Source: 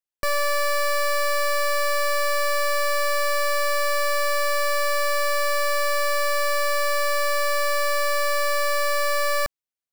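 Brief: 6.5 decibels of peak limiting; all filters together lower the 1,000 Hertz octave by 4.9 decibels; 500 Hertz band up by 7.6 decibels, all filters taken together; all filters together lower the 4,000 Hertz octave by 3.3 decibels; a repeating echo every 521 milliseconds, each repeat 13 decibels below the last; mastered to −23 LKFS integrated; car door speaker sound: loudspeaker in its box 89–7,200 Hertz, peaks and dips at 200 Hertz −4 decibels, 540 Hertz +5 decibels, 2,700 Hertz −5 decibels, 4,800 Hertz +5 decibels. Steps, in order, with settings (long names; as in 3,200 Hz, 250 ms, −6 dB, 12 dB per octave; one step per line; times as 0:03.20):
parametric band 500 Hz +7 dB
parametric band 1,000 Hz −6.5 dB
parametric band 4,000 Hz −7 dB
brickwall limiter −23.5 dBFS
loudspeaker in its box 89–7,200 Hz, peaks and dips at 200 Hz −4 dB, 540 Hz +5 dB, 2,700 Hz −5 dB, 4,800 Hz +5 dB
repeating echo 521 ms, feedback 22%, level −13 dB
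level +3 dB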